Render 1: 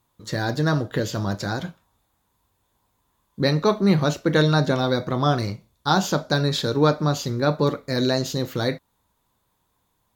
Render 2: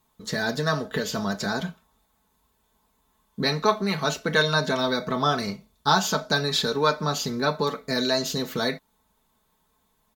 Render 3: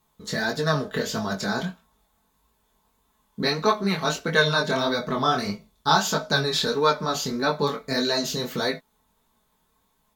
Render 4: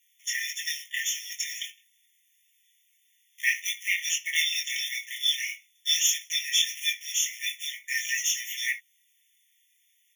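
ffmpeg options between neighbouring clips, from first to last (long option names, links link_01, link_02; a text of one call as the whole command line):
ffmpeg -i in.wav -filter_complex "[0:a]aecho=1:1:4.6:0.76,acrossover=split=690[link_01][link_02];[link_01]acompressor=threshold=-26dB:ratio=6[link_03];[link_03][link_02]amix=inputs=2:normalize=0" out.wav
ffmpeg -i in.wav -af "flanger=delay=17.5:depth=7.4:speed=1.6,volume=3.5dB" out.wav
ffmpeg -i in.wav -af "acrusher=bits=5:mode=log:mix=0:aa=0.000001,afftfilt=real='re*eq(mod(floor(b*sr/1024/1800),2),1)':imag='im*eq(mod(floor(b*sr/1024/1800),2),1)':win_size=1024:overlap=0.75,volume=8dB" out.wav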